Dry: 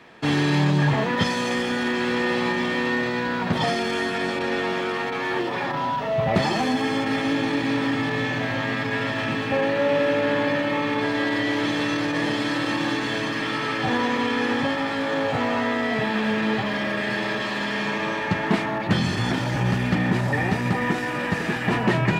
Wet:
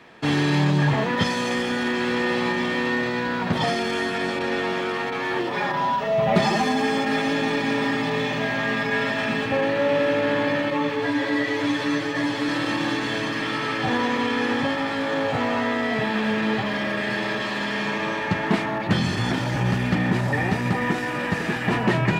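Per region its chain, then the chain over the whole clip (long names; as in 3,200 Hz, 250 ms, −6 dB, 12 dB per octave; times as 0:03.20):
0:05.54–0:09.46: mains-hum notches 50/100/150/200/250/300/350/400/450 Hz + comb filter 4.9 ms, depth 69%
0:10.70–0:12.49: comb filter 7.2 ms, depth 74% + string-ensemble chorus
whole clip: no processing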